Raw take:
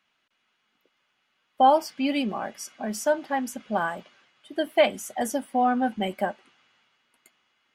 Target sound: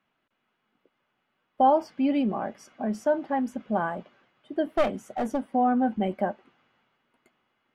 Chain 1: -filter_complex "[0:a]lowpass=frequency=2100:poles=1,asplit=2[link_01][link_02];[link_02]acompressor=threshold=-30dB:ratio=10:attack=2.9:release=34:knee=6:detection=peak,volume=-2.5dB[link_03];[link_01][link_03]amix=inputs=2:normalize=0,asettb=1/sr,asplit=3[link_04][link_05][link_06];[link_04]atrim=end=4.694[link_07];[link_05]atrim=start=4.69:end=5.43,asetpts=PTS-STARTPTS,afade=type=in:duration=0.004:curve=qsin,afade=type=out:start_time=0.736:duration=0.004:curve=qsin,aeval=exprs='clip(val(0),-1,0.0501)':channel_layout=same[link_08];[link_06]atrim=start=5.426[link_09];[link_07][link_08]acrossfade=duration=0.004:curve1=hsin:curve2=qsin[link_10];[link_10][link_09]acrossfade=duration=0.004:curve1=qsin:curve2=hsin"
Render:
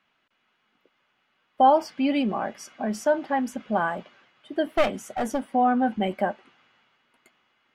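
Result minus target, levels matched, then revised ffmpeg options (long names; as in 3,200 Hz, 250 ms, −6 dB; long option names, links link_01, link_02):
2,000 Hz band +4.0 dB
-filter_complex "[0:a]lowpass=frequency=660:poles=1,asplit=2[link_01][link_02];[link_02]acompressor=threshold=-30dB:ratio=10:attack=2.9:release=34:knee=6:detection=peak,volume=-2.5dB[link_03];[link_01][link_03]amix=inputs=2:normalize=0,asettb=1/sr,asplit=3[link_04][link_05][link_06];[link_04]atrim=end=4.694[link_07];[link_05]atrim=start=4.69:end=5.43,asetpts=PTS-STARTPTS,afade=type=in:duration=0.004:curve=qsin,afade=type=out:start_time=0.736:duration=0.004:curve=qsin,aeval=exprs='clip(val(0),-1,0.0501)':channel_layout=same[link_08];[link_06]atrim=start=5.426[link_09];[link_07][link_08]acrossfade=duration=0.004:curve1=hsin:curve2=qsin[link_10];[link_10][link_09]acrossfade=duration=0.004:curve1=qsin:curve2=hsin"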